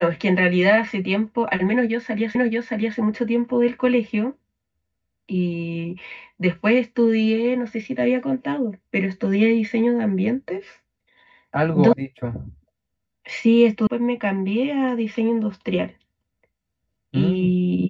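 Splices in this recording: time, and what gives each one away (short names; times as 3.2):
2.35 repeat of the last 0.62 s
11.93 sound cut off
13.87 sound cut off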